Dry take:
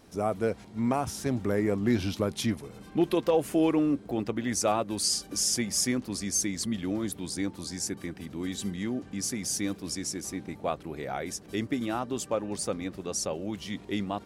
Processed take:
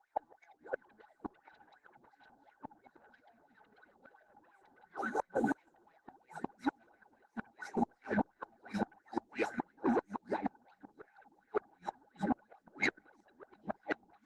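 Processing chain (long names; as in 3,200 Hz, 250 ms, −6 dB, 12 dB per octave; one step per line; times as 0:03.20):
pitch glide at a constant tempo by +7.5 semitones ending unshifted
flanger 1.5 Hz, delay 8.2 ms, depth 1.7 ms, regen +71%
soft clipping −34.5 dBFS, distortion −8 dB
LFO wah 2.9 Hz 230–2,200 Hz, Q 13
delay with pitch and tempo change per echo 536 ms, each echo −2 semitones, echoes 3, each echo −6 dB
downward expander −58 dBFS
sine wavefolder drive 17 dB, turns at −35 dBFS
hollow resonant body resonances 820/1,500/3,900 Hz, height 17 dB, ringing for 30 ms
gate with flip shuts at −29 dBFS, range −39 dB
level +8.5 dB
Opus 16 kbit/s 48,000 Hz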